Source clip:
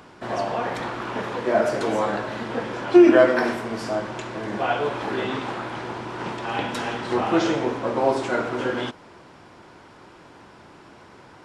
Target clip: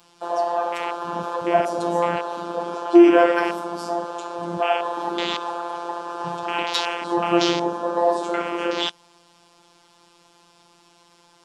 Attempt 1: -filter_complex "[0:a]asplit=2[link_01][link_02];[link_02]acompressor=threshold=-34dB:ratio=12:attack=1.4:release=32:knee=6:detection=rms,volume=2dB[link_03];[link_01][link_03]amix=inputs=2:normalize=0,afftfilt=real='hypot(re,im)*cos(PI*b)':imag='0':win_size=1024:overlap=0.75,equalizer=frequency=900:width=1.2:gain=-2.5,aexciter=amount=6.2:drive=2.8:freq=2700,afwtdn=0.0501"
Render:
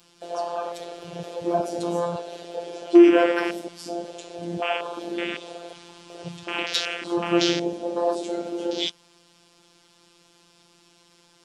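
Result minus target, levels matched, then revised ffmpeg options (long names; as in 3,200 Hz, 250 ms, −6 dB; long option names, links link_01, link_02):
1,000 Hz band −6.5 dB
-filter_complex "[0:a]asplit=2[link_01][link_02];[link_02]acompressor=threshold=-34dB:ratio=12:attack=1.4:release=32:knee=6:detection=rms,volume=2dB[link_03];[link_01][link_03]amix=inputs=2:normalize=0,afftfilt=real='hypot(re,im)*cos(PI*b)':imag='0':win_size=1024:overlap=0.75,equalizer=frequency=900:width=1.2:gain=6,aexciter=amount=6.2:drive=2.8:freq=2700,afwtdn=0.0501"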